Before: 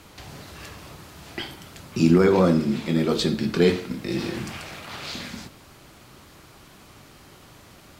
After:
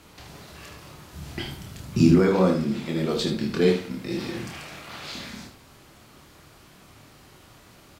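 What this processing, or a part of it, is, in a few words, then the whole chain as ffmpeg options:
slapback doubling: -filter_complex "[0:a]asettb=1/sr,asplit=3[a][b][c];[a]atrim=end=1.134[d];[b]atrim=start=1.13:end=2.12,asetpts=PTS-STARTPTS,afade=t=in:d=0.004:c=qsin,afade=t=out:st=0.986:d=0.004:c=qsin,bass=f=250:g=11,treble=f=4k:g=3[e];[c]atrim=start=2.116[f];[d][e]acrossfade=d=0.004:c1=hsin:c2=qsin[g];[g][f]acrossfade=d=0.004:c1=qsin:c2=hsin,asplit=3[h][i][j];[i]adelay=27,volume=-5dB[k];[j]adelay=76,volume=-8.5dB[l];[h][k][l]amix=inputs=3:normalize=0,volume=-4dB"

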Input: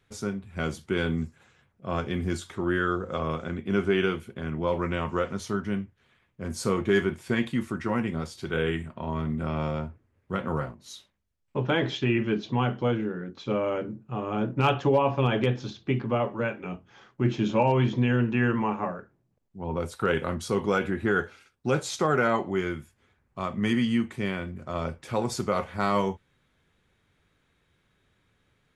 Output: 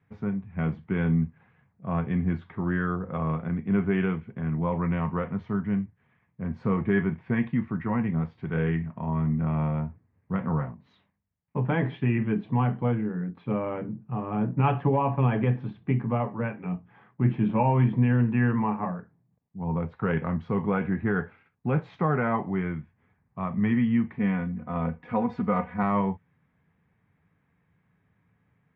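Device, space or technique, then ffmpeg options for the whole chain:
bass cabinet: -filter_complex "[0:a]highpass=80,equalizer=f=110:t=q:w=4:g=3,equalizer=f=170:t=q:w=4:g=7,equalizer=f=360:t=q:w=4:g=-9,equalizer=f=560:t=q:w=4:g=-7,equalizer=f=1.4k:t=q:w=4:g=-8,lowpass=f=2k:w=0.5412,lowpass=f=2k:w=1.3066,asettb=1/sr,asplit=3[a][b][c];[a]atrim=end=24.184[d];[b]atrim=start=24.18:end=25.83,asetpts=PTS-STARTPTS,afade=t=in:d=0.004:c=qsin,afade=t=out:st=1.646:d=0.004:c=qsin,aecho=1:1:4.1:0.77,atrim=end_sample=72765[e];[c]atrim=start=25.826[f];[d][e]acrossfade=d=0.004:c1=hsin:c2=qsin[g];[g][f]acrossfade=d=0.004:c1=qsin:c2=hsin,volume=1.5dB"

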